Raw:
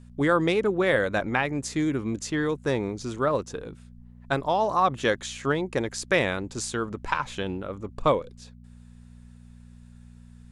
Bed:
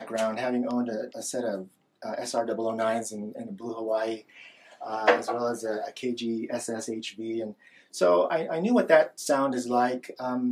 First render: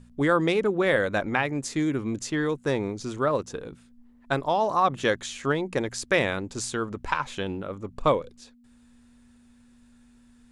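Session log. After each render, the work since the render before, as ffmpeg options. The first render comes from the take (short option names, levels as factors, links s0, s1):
-af "bandreject=f=60:t=h:w=4,bandreject=f=120:t=h:w=4,bandreject=f=180:t=h:w=4"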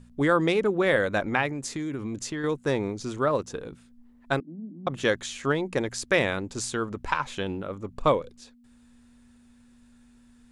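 -filter_complex "[0:a]asettb=1/sr,asplit=3[s0][s1][s2];[s0]atrim=end=1.484[s3];[s1]atrim=start=1.48:end=2.44,asetpts=PTS-STARTPTS,afade=t=in:d=0.004:c=qsin,afade=t=out:st=0.956:d=0.004:c=qsin,acompressor=threshold=0.0398:ratio=6:attack=3.2:release=140:knee=1:detection=peak[s4];[s2]atrim=start=2.436[s5];[s3][s4]acrossfade=d=0.004:c1=hsin:c2=qsin[s6];[s6][s5]acrossfade=d=0.004:c1=qsin:c2=hsin,asettb=1/sr,asplit=3[s7][s8][s9];[s7]atrim=end=4.404[s10];[s8]atrim=start=4.4:end=4.87,asetpts=PTS-STARTPTS,afade=t=in:d=0.004:c=qsin,afade=t=out:st=0.466:d=0.004:c=qsin,asuperpass=centerf=230:order=8:qfactor=1.6[s11];[s9]atrim=start=4.866[s12];[s10][s11]acrossfade=d=0.004:c1=hsin:c2=qsin[s13];[s13][s12]acrossfade=d=0.004:c1=qsin:c2=hsin"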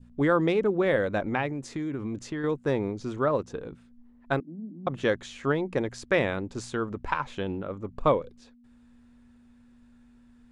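-af "lowpass=f=2000:p=1,adynamicequalizer=threshold=0.01:dfrequency=1400:dqfactor=0.9:tfrequency=1400:tqfactor=0.9:attack=5:release=100:ratio=0.375:range=2:mode=cutabove:tftype=bell"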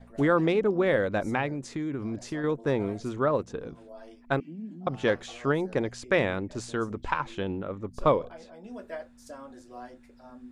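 -filter_complex "[1:a]volume=0.106[s0];[0:a][s0]amix=inputs=2:normalize=0"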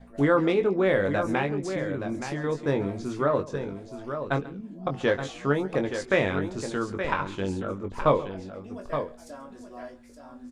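-filter_complex "[0:a]asplit=2[s0][s1];[s1]adelay=21,volume=0.473[s2];[s0][s2]amix=inputs=2:normalize=0,aecho=1:1:137|872:0.112|0.376"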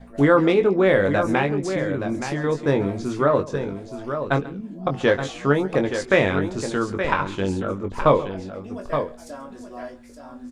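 -af "volume=1.88,alimiter=limit=0.708:level=0:latency=1"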